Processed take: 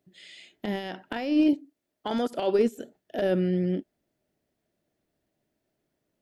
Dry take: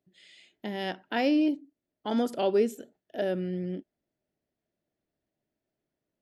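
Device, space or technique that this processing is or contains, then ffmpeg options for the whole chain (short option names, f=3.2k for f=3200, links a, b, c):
de-esser from a sidechain: -filter_complex "[0:a]asettb=1/sr,asplit=3[a][b][c];[a]atrim=end=1.534[d];[b]atrim=start=1.53:end=2.59,asetpts=PTS-STARTPTS,afade=t=in:d=0.004:c=qsin,afade=t=out:st=1.056:d=0.004:c=qsin,lowshelf=f=300:g=-8.5[e];[c]atrim=start=2.586[f];[d][e]acrossfade=d=0.004:c1=hsin:c2=qsin[g];[g][f]acrossfade=d=0.004:c1=qsin:c2=hsin,asplit=2[h][i];[i]highpass=6.3k,apad=whole_len=273958[j];[h][j]sidechaincompress=threshold=-54dB:ratio=16:attack=0.53:release=50,volume=7dB"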